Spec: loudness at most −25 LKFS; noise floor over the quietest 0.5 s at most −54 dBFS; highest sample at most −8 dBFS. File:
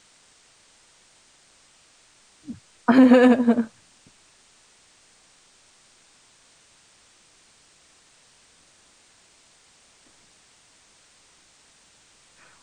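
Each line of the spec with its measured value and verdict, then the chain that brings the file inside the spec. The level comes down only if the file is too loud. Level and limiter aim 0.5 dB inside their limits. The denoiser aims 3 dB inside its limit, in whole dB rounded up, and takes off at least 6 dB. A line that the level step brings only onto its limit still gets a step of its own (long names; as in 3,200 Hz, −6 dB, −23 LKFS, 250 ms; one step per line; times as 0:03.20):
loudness −17.5 LKFS: out of spec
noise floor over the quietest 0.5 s −57 dBFS: in spec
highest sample −4.5 dBFS: out of spec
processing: level −8 dB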